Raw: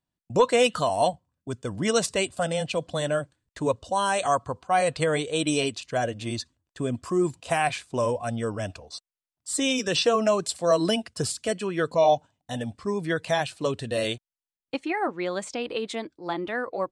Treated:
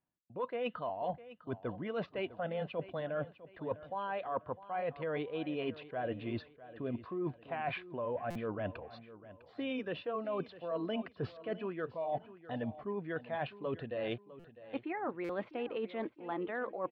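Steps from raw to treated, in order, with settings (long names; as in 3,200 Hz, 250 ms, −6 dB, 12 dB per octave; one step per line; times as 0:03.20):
Bessel low-pass filter 1,800 Hz, order 8
low-shelf EQ 120 Hz −11.5 dB
reversed playback
downward compressor 12 to 1, threshold −35 dBFS, peak gain reduction 20.5 dB
reversed playback
repeating echo 653 ms, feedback 36%, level −16 dB
buffer that repeats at 0:08.30/0:14.39/0:15.24, samples 256, times 8
level +1 dB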